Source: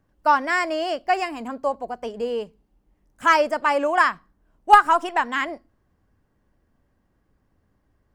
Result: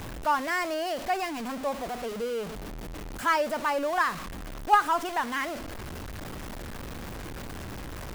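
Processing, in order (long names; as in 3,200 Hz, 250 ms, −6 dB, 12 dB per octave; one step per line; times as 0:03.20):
converter with a step at zero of −23 dBFS
level −9 dB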